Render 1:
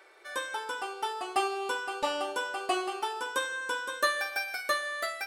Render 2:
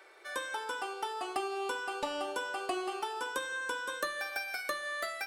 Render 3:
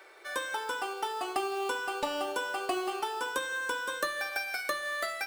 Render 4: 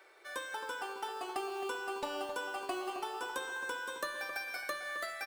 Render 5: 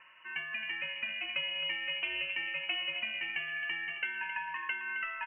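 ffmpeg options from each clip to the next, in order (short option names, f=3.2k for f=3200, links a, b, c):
-filter_complex "[0:a]acrossover=split=340[a][b];[b]acompressor=threshold=-33dB:ratio=5[c];[a][c]amix=inputs=2:normalize=0"
-af "acrusher=bits=5:mode=log:mix=0:aa=0.000001,volume=3dB"
-filter_complex "[0:a]asplit=2[a][b];[b]adelay=266,lowpass=f=2.1k:p=1,volume=-7.5dB,asplit=2[c][d];[d]adelay=266,lowpass=f=2.1k:p=1,volume=0.5,asplit=2[e][f];[f]adelay=266,lowpass=f=2.1k:p=1,volume=0.5,asplit=2[g][h];[h]adelay=266,lowpass=f=2.1k:p=1,volume=0.5,asplit=2[i][j];[j]adelay=266,lowpass=f=2.1k:p=1,volume=0.5,asplit=2[k][l];[l]adelay=266,lowpass=f=2.1k:p=1,volume=0.5[m];[a][c][e][g][i][k][m]amix=inputs=7:normalize=0,volume=-6.5dB"
-af "lowpass=f=2.8k:t=q:w=0.5098,lowpass=f=2.8k:t=q:w=0.6013,lowpass=f=2.8k:t=q:w=0.9,lowpass=f=2.8k:t=q:w=2.563,afreqshift=-3300,volume=3dB"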